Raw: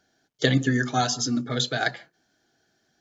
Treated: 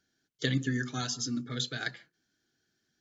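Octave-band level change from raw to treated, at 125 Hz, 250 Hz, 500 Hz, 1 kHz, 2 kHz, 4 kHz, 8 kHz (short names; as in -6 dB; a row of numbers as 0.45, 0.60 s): -7.5 dB, -8.0 dB, -12.5 dB, -16.0 dB, -8.5 dB, -7.5 dB, n/a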